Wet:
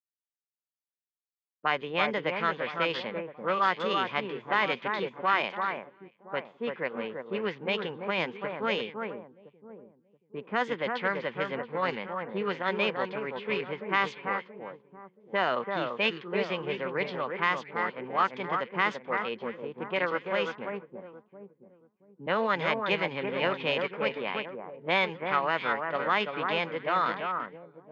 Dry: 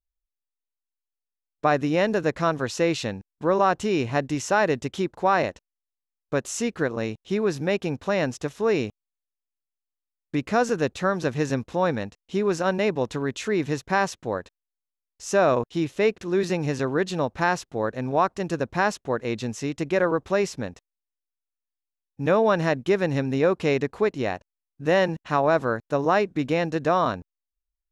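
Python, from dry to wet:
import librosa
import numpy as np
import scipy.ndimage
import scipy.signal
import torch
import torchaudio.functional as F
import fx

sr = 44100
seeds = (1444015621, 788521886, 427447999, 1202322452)

y = fx.cabinet(x, sr, low_hz=190.0, low_slope=24, high_hz=4400.0, hz=(290.0, 650.0, 1000.0, 2000.0, 2900.0), db=(-9, -8, 6, 8, 9))
y = fx.echo_alternate(y, sr, ms=339, hz=1800.0, feedback_pct=60, wet_db=-5.0)
y = fx.formant_shift(y, sr, semitones=3)
y = fx.env_lowpass(y, sr, base_hz=300.0, full_db=-17.0)
y = fx.air_absorb(y, sr, metres=72.0)
y = y * librosa.db_to_amplitude(-5.5)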